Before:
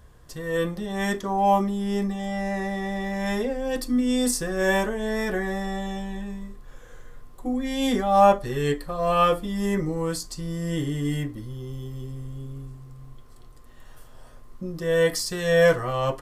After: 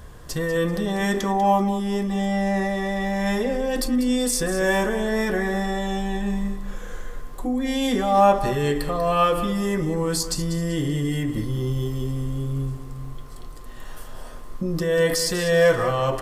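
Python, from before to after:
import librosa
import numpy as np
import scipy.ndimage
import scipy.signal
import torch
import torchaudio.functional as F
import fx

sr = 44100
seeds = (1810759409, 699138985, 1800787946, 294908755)

p1 = fx.hum_notches(x, sr, base_hz=60, count=2)
p2 = fx.over_compress(p1, sr, threshold_db=-34.0, ratio=-1.0)
p3 = p1 + (p2 * 10.0 ** (0.0 / 20.0))
y = fx.echo_feedback(p3, sr, ms=193, feedback_pct=32, wet_db=-11.5)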